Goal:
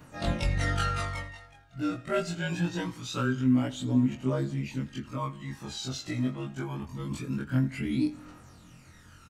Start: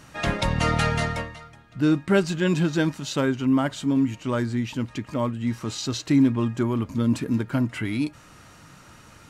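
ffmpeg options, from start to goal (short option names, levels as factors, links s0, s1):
-af "afftfilt=real='re':imag='-im':win_size=2048:overlap=0.75,aphaser=in_gain=1:out_gain=1:delay=1.6:decay=0.58:speed=0.24:type=triangular,aecho=1:1:83|166|249|332:0.106|0.0572|0.0309|0.0167,volume=0.668"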